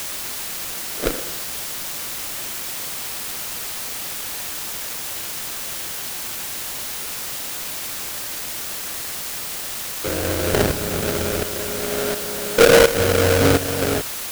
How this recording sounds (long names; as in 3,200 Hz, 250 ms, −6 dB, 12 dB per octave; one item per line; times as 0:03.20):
aliases and images of a low sample rate 1,000 Hz, jitter 20%
tremolo saw up 1.4 Hz, depth 75%
a quantiser's noise floor 6 bits, dither triangular